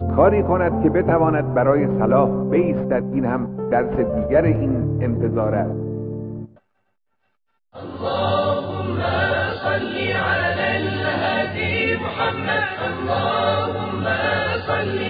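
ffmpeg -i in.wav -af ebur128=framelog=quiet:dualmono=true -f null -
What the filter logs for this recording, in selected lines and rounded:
Integrated loudness:
  I:         -17.2 LUFS
  Threshold: -27.4 LUFS
Loudness range:
  LRA:         7.1 LU
  Threshold: -38.1 LUFS
  LRA low:   -22.9 LUFS
  LRA high:  -15.7 LUFS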